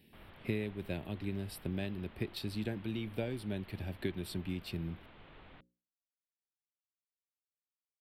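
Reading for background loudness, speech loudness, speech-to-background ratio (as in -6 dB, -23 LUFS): -57.0 LUFS, -40.0 LUFS, 17.0 dB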